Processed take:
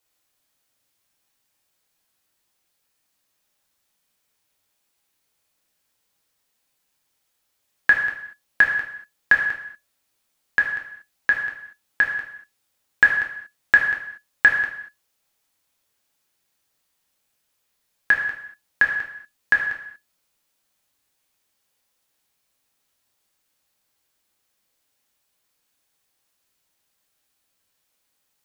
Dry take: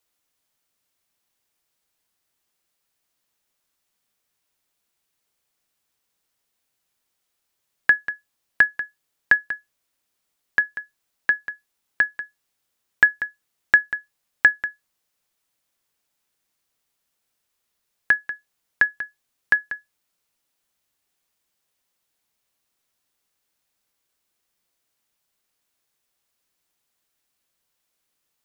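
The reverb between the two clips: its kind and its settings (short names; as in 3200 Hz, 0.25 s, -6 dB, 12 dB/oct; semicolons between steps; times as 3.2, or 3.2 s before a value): non-linear reverb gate 0.26 s falling, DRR -1 dB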